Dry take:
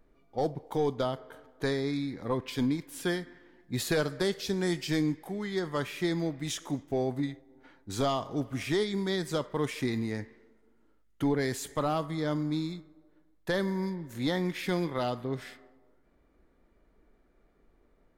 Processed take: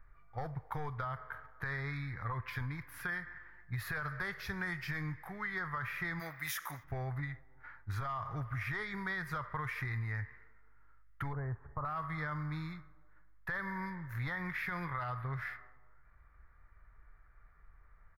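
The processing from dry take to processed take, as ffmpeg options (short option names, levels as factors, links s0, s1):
-filter_complex "[0:a]asplit=3[s0][s1][s2];[s0]afade=t=out:st=6.19:d=0.02[s3];[s1]aemphasis=mode=production:type=riaa,afade=t=in:st=6.19:d=0.02,afade=t=out:st=6.83:d=0.02[s4];[s2]afade=t=in:st=6.83:d=0.02[s5];[s3][s4][s5]amix=inputs=3:normalize=0,asettb=1/sr,asplit=3[s6][s7][s8];[s6]atrim=end=11.334[s9];[s7]atrim=start=11.33:end=11.85,asetpts=PTS-STARTPTS,afade=t=in:d=0.004:c=qsin,afade=t=out:st=0.516:d=0.004:c=qsin,lowpass=f=1000:w=0.5412,lowpass=f=1000:w=1.3066[s10];[s8]atrim=start=11.846[s11];[s9][s10]acrossfade=d=0.004:c1=hsin:c2=qsin[s12];[s12][s11]acrossfade=d=0.004:c1=qsin:c2=hsin,firequalizer=gain_entry='entry(110,0);entry(240,-27);entry(1200,2);entry(1900,1);entry(3000,-19);entry(5200,-19);entry(8000,-30);entry(11000,-13)':delay=0.05:min_phase=1,alimiter=level_in=2.82:limit=0.0631:level=0:latency=1:release=35,volume=0.355,acompressor=threshold=0.00794:ratio=6,volume=2.37"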